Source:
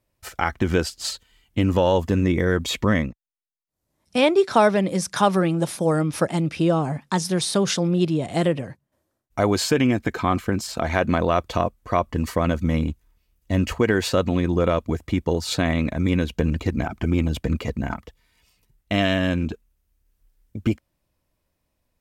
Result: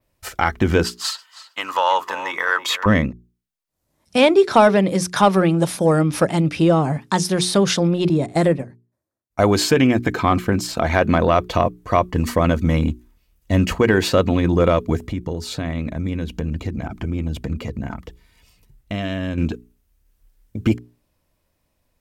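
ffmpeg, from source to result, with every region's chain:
-filter_complex "[0:a]asettb=1/sr,asplit=3[s0][s1][s2];[s0]atrim=end=0.844[s3];[s1]atrim=start=0.84:end=2.86,asetpts=PTS-STARTPTS,afade=t=in:d=0.004:c=qsin,afade=t=out:st=2.016:d=0.004:c=qsin,highpass=f=1100:t=q:w=3,bandreject=f=2300:w=23,asplit=2[s4][s5];[s5]adelay=320,lowpass=f=2300:p=1,volume=0.251,asplit=2[s6][s7];[s7]adelay=320,lowpass=f=2300:p=1,volume=0.32,asplit=2[s8][s9];[s9]adelay=320,lowpass=f=2300:p=1,volume=0.32[s10];[s4][s6][s8][s10]amix=inputs=4:normalize=0,atrim=end_sample=89082[s11];[s2]atrim=start=2.856[s12];[s3][s11]acrossfade=d=0.004:c1=hsin:c2=qsin[s13];[s13][s12]acrossfade=d=0.004:c1=qsin:c2=hsin,asettb=1/sr,asplit=3[s14][s15][s16];[s14]atrim=end=8.094[s17];[s15]atrim=start=8.09:end=9.43,asetpts=PTS-STARTPTS,afade=t=in:d=0.004:c=qsin,afade=t=out:st=1.336:d=0.004:c=qsin,highpass=48,equalizer=f=3000:w=6.4:g=-13,agate=range=0.178:threshold=0.0355:ratio=16:release=100:detection=peak[s18];[s16]atrim=start=9.426[s19];[s17][s18]acrossfade=d=0.004:c1=hsin:c2=qsin[s20];[s20][s19]acrossfade=d=0.004:c1=qsin:c2=hsin,asettb=1/sr,asplit=3[s21][s22][s23];[s21]atrim=end=14.994[s24];[s22]atrim=start=14.99:end=19.38,asetpts=PTS-STARTPTS,afade=t=in:d=0.004:c=qsin,afade=t=out:st=4.386:d=0.004:c=qsin,acompressor=threshold=0.0112:ratio=2:attack=3.2:release=140:knee=1:detection=peak,lowshelf=f=360:g=6[s25];[s23]atrim=start=19.376[s26];[s24][s25]acrossfade=d=0.004:c1=hsin:c2=qsin[s27];[s27][s26]acrossfade=d=0.004:c1=qsin:c2=hsin,adynamicequalizer=threshold=0.00501:dfrequency=7900:dqfactor=0.95:tfrequency=7900:tqfactor=0.95:attack=5:release=100:ratio=0.375:range=2.5:mode=cutabove:tftype=bell,acontrast=27,bandreject=f=60:t=h:w=6,bandreject=f=120:t=h:w=6,bandreject=f=180:t=h:w=6,bandreject=f=240:t=h:w=6,bandreject=f=300:t=h:w=6,bandreject=f=360:t=h:w=6,bandreject=f=420:t=h:w=6"

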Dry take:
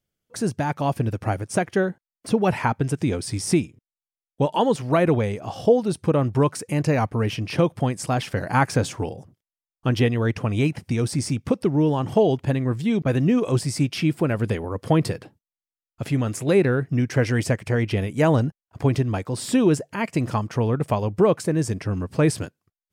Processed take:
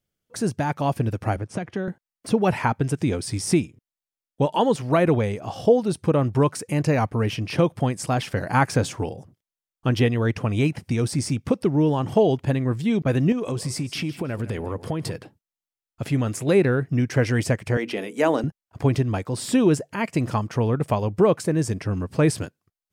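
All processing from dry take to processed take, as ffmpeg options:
-filter_complex "[0:a]asettb=1/sr,asplit=3[s0][s1][s2];[s0]atrim=end=1.364[s3];[s1]atrim=start=1.36:end=1.88,asetpts=PTS-STARTPTS,afade=t=in:d=0.004:c=qsin,afade=t=out:st=0.516:d=0.004:c=qsin,acrossover=split=160|3000[s4][s5][s6];[s5]acompressor=threshold=0.0398:ratio=4:attack=3.2:release=140:knee=2.83:detection=peak[s7];[s4][s7][s6]amix=inputs=3:normalize=0,aemphasis=mode=reproduction:type=75fm[s8];[s2]atrim=start=1.876[s9];[s3][s8]acrossfade=d=0.004:c1=hsin:c2=qsin[s10];[s10][s9]acrossfade=d=0.004:c1=qsin:c2=hsin,asettb=1/sr,asplit=3[s11][s12][s13];[s11]atrim=end=13.324[s14];[s12]atrim=start=13.32:end=15.15,asetpts=PTS-STARTPTS,afade=t=in:d=0.004:c=qsin,afade=t=out:st=1.826:d=0.004:c=qsin,acompressor=threshold=0.0708:ratio=5:attack=3.2:release=140:knee=1:detection=peak,aecho=1:1:160|320:0.168|0.0403,atrim=end_sample=80703[s15];[s13]atrim=start=15.146[s16];[s14][s15]acrossfade=d=0.004:c1=hsin:c2=qsin[s17];[s17][s16]acrossfade=d=0.004:c1=qsin:c2=hsin,asettb=1/sr,asplit=3[s18][s19][s20];[s18]atrim=end=17.774[s21];[s19]atrim=start=17.77:end=18.44,asetpts=PTS-STARTPTS,afade=t=in:d=0.004:c=qsin,afade=t=out:st=0.666:d=0.004:c=qsin,highpass=f=240:w=0.5412,highpass=f=240:w=1.3066,bandreject=f=60:t=h:w=6,bandreject=f=120:t=h:w=6,bandreject=f=180:t=h:w=6,bandreject=f=240:t=h:w=6,bandreject=f=300:t=h:w=6,bandreject=f=360:t=h:w=6,bandreject=f=420:t=h:w=6,bandreject=f=480:t=h:w=6[s22];[s20]atrim=start=18.436[s23];[s21][s22]acrossfade=d=0.004:c1=hsin:c2=qsin[s24];[s24][s23]acrossfade=d=0.004:c1=qsin:c2=hsin"

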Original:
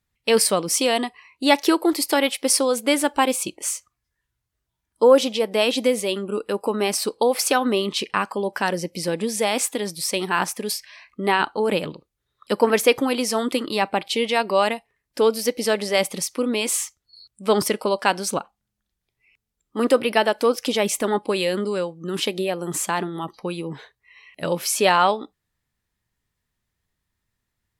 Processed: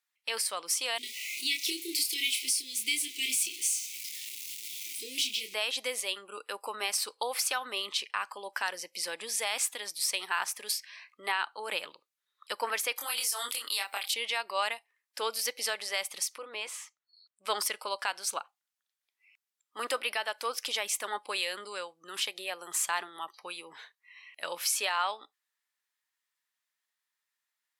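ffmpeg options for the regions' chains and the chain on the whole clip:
-filter_complex "[0:a]asettb=1/sr,asplit=3[s0][s1][s2];[s0]atrim=end=0.984[s3];[s1]atrim=start=0.98:end=5.54,asetpts=PTS-STARTPTS,afade=t=in:d=0.004:c=qsin,afade=t=out:st=4.556:d=0.004:c=qsin,aeval=exprs='val(0)+0.5*0.0422*sgn(val(0))':c=same,asuperstop=centerf=940:order=20:qfactor=0.55,asplit=2[s4][s5];[s5]adelay=27,volume=0.562[s6];[s4][s6]amix=inputs=2:normalize=0,atrim=end_sample=201096[s7];[s2]atrim=start=5.536[s8];[s3][s7]acrossfade=d=0.004:c1=hsin:c2=qsin[s9];[s9][s8]acrossfade=d=0.004:c1=qsin:c2=hsin,asettb=1/sr,asplit=3[s10][s11][s12];[s10]atrim=end=12.964[s13];[s11]atrim=start=12.96:end=14.14,asetpts=PTS-STARTPTS,afade=t=in:d=0.004:c=qsin,afade=t=out:st=1.176:d=0.004:c=qsin,aemphasis=mode=production:type=riaa,acompressor=threshold=0.0891:ratio=6:attack=3.2:release=140:knee=1:detection=peak,asplit=2[s14][s15];[s15]adelay=25,volume=0.708[s16];[s14][s16]amix=inputs=2:normalize=0,atrim=end_sample=52038[s17];[s12]atrim=start=14.136[s18];[s13][s17]acrossfade=d=0.004:c1=hsin:c2=qsin[s19];[s19][s18]acrossfade=d=0.004:c1=qsin:c2=hsin,asettb=1/sr,asplit=3[s20][s21][s22];[s20]atrim=end=16.384[s23];[s21]atrim=start=16.38:end=17.45,asetpts=PTS-STARTPTS,afade=t=in:d=0.004:c=qsin,afade=t=out:st=1.066:d=0.004:c=qsin,lowpass=f=1300:p=1,equalizer=f=250:w=6.3:g=-11[s24];[s22]atrim=start=17.446[s25];[s23][s24]acrossfade=d=0.004:c1=hsin:c2=qsin[s26];[s26][s25]acrossfade=d=0.004:c1=qsin:c2=hsin,highpass=1100,alimiter=limit=0.178:level=0:latency=1:release=337,volume=0.708"

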